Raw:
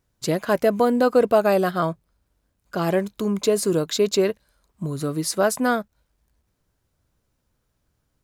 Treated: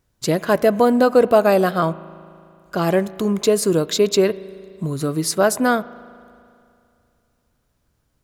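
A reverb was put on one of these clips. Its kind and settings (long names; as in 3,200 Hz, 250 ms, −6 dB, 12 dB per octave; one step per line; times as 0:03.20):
spring reverb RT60 2.5 s, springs 37 ms, chirp 65 ms, DRR 18 dB
level +3.5 dB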